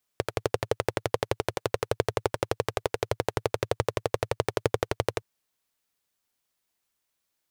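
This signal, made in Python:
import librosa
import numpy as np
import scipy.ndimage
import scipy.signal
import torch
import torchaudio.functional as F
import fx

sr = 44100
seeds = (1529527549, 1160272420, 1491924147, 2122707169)

y = fx.engine_single(sr, seeds[0], length_s=5.02, rpm=1400, resonances_hz=(110.0, 450.0))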